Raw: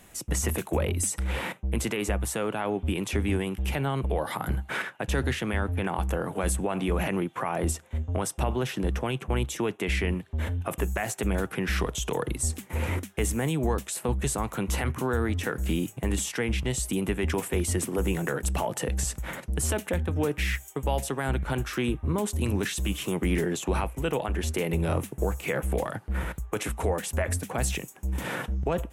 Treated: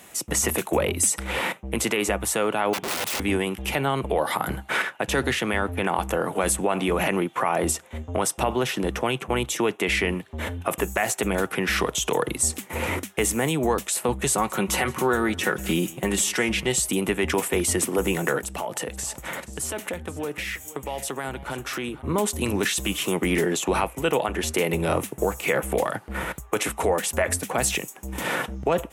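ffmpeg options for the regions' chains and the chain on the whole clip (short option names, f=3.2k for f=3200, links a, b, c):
-filter_complex "[0:a]asettb=1/sr,asplit=3[a][b][c];[a]atrim=end=2.734[d];[b]atrim=start=2.73:end=3.2,asetpts=PTS-STARTPTS,afade=t=in:d=0.004:c=qsin,afade=t=out:st=0.466:d=0.004:c=qsin,equalizer=f=540:w=7:g=-6.5,aeval=exprs='(mod(29.9*val(0)+1,2)-1)/29.9':c=same[e];[c]atrim=start=3.196[f];[d][e]acrossfade=d=0.004:c1=hsin:c2=qsin[g];[g][f]acrossfade=d=0.004:c1=qsin:c2=hsin,asettb=1/sr,asplit=3[h][i][j];[h]atrim=end=14.324[k];[i]atrim=start=14.32:end=16.8,asetpts=PTS-STARTPTS,afade=t=in:d=0.004:c=qsin,afade=t=out:st=2.476:d=0.004:c=qsin,aecho=1:1:5.4:0.46,atrim=end_sample=109368,aecho=1:1:176:0.0841,atrim=end_sample=109368[l];[j]atrim=start=16.796[m];[k][l]acrossfade=d=0.004:c1=hsin:c2=qsin[n];[n][m]acrossfade=d=0.004:c1=qsin:c2=hsin,asettb=1/sr,asplit=3[o][p][q];[o]atrim=end=18.404[r];[p]atrim=start=18.4:end=22.02,asetpts=PTS-STARTPTS,afade=t=in:d=0.004:c=qsin,afade=t=out:st=3.616:d=0.004:c=qsin,acompressor=threshold=-34dB:ratio=2.5:attack=3.2:release=140:knee=1:detection=peak,aecho=1:1:479:0.141,atrim=end_sample=159642[s];[q]atrim=start=22.016[t];[r][s]acrossfade=d=0.004:c1=hsin:c2=qsin[u];[u][t]acrossfade=d=0.004:c1=qsin:c2=hsin,highpass=f=330:p=1,bandreject=f=1.6k:w=21,volume=7.5dB"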